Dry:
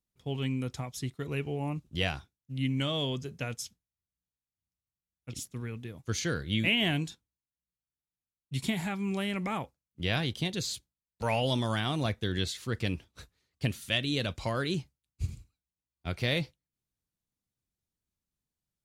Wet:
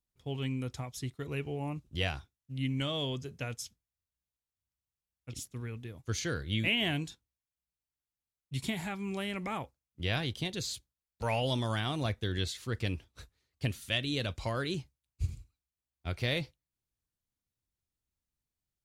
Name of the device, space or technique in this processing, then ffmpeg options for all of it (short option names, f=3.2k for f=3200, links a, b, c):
low shelf boost with a cut just above: -af "lowshelf=f=110:g=5.5,equalizer=f=180:t=o:w=0.82:g=-4.5,volume=-2.5dB"